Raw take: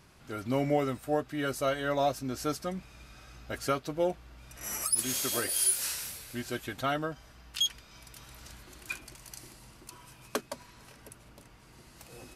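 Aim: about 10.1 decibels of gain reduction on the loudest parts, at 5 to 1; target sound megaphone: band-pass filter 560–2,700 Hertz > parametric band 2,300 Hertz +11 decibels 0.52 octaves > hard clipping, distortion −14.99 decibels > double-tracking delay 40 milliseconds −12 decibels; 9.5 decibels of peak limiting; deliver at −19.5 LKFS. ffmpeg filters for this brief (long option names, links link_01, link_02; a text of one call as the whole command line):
ffmpeg -i in.wav -filter_complex "[0:a]acompressor=threshold=-34dB:ratio=5,alimiter=level_in=4.5dB:limit=-24dB:level=0:latency=1,volume=-4.5dB,highpass=560,lowpass=2700,equalizer=frequency=2300:width_type=o:width=0.52:gain=11,asoftclip=type=hard:threshold=-33.5dB,asplit=2[link_01][link_02];[link_02]adelay=40,volume=-12dB[link_03];[link_01][link_03]amix=inputs=2:normalize=0,volume=25dB" out.wav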